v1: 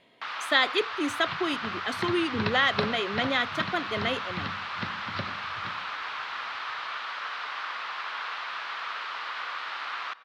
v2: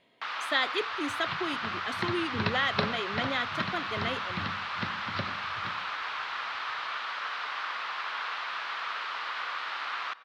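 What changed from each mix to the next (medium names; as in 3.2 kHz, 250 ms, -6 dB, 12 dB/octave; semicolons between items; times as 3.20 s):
speech -5.0 dB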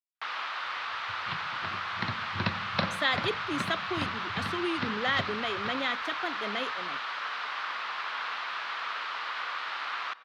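speech: entry +2.50 s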